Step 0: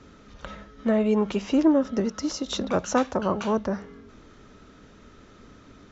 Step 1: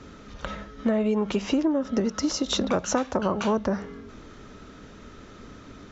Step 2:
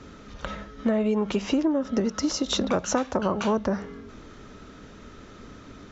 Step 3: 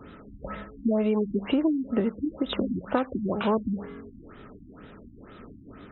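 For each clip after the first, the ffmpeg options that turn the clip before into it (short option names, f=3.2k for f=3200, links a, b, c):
-af "acompressor=threshold=-25dB:ratio=12,volume=5dB"
-af anull
-af "lowshelf=f=66:g=-6,afftfilt=real='re*lt(b*sr/1024,300*pow(4100/300,0.5+0.5*sin(2*PI*2.1*pts/sr)))':imag='im*lt(b*sr/1024,300*pow(4100/300,0.5+0.5*sin(2*PI*2.1*pts/sr)))':win_size=1024:overlap=0.75"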